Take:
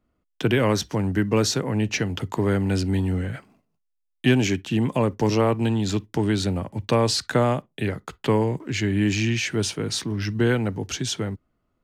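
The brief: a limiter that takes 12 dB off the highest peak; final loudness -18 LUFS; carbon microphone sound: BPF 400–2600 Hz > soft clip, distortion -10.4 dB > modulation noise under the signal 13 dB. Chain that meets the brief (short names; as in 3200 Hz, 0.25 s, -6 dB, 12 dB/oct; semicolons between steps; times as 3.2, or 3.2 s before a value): limiter -19 dBFS; BPF 400–2600 Hz; soft clip -31.5 dBFS; modulation noise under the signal 13 dB; gain +19.5 dB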